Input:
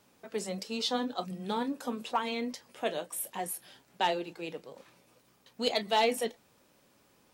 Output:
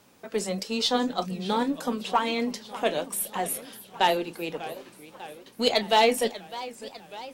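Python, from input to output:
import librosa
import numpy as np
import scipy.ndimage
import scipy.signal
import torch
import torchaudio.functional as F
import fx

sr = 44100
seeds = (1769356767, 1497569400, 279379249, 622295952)

y = fx.cheby_harmonics(x, sr, harmonics=(8,), levels_db=(-36,), full_scale_db=-16.0)
y = fx.echo_warbled(y, sr, ms=599, feedback_pct=63, rate_hz=2.8, cents=210, wet_db=-16.0)
y = y * 10.0 ** (6.5 / 20.0)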